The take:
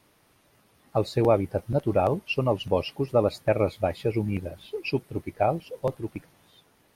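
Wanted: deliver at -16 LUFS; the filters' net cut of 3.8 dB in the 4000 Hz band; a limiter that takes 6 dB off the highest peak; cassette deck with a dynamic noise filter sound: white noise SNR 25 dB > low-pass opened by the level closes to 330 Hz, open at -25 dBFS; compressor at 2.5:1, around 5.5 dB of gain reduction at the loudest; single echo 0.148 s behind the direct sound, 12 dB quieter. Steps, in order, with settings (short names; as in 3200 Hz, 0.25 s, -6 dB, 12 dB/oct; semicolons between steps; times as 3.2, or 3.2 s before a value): bell 4000 Hz -6 dB; compressor 2.5:1, threshold -25 dBFS; limiter -19 dBFS; echo 0.148 s -12 dB; white noise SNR 25 dB; low-pass opened by the level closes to 330 Hz, open at -25 dBFS; gain +17 dB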